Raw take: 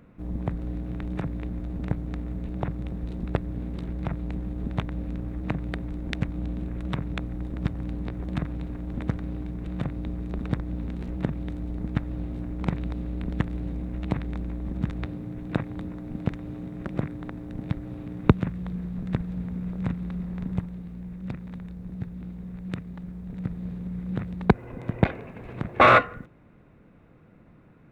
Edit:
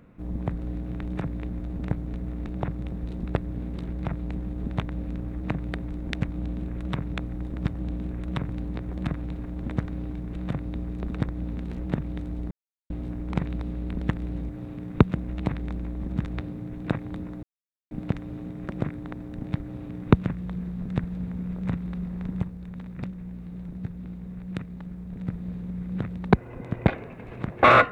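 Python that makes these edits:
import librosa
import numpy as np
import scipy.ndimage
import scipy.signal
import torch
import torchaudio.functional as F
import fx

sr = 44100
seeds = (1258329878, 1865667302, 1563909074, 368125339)

y = fx.edit(x, sr, fx.reverse_span(start_s=2.14, length_s=0.32),
    fx.duplicate(start_s=6.37, length_s=0.69, to_s=7.8),
    fx.silence(start_s=11.82, length_s=0.39),
    fx.insert_silence(at_s=16.08, length_s=0.48),
    fx.duplicate(start_s=17.78, length_s=0.66, to_s=13.8),
    fx.reverse_span(start_s=20.65, length_s=1.21), tone=tone)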